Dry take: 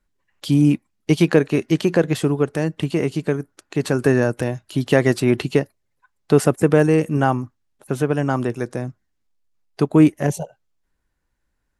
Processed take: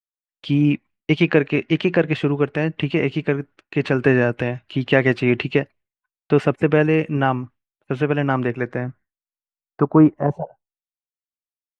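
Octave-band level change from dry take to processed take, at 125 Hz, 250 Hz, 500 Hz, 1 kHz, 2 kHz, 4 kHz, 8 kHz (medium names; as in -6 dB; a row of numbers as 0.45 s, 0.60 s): -1.0 dB, -1.0 dB, -0.5 dB, +0.5 dB, +4.0 dB, +1.0 dB, under -15 dB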